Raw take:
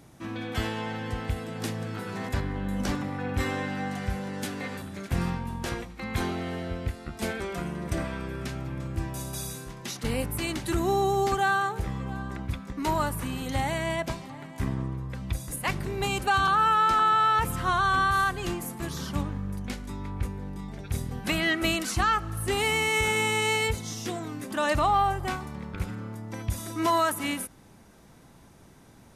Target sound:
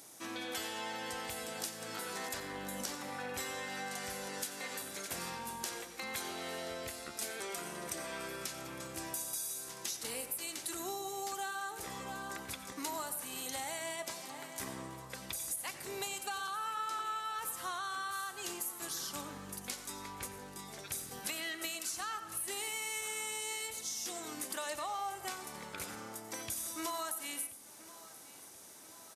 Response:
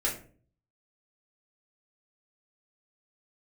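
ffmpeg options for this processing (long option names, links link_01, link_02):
-filter_complex "[0:a]highpass=frequency=180:poles=1,bass=frequency=250:gain=-14,treble=frequency=4000:gain=14,acompressor=threshold=-35dB:ratio=6,aecho=1:1:1030|2060|3090|4120|5150:0.112|0.0651|0.0377|0.0219|0.0127,asplit=2[link_01][link_02];[1:a]atrim=start_sample=2205,adelay=88[link_03];[link_02][link_03]afir=irnorm=-1:irlink=0,volume=-18dB[link_04];[link_01][link_04]amix=inputs=2:normalize=0,volume=-2.5dB"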